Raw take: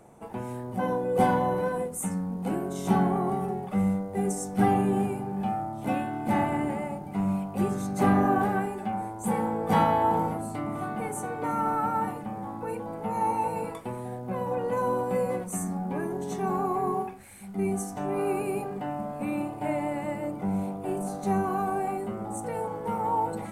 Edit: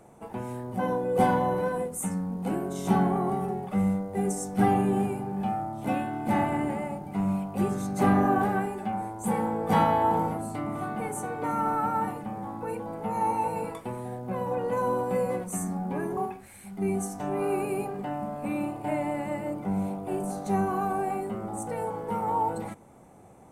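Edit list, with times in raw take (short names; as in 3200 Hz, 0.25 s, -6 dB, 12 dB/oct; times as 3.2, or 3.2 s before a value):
16.17–16.94 cut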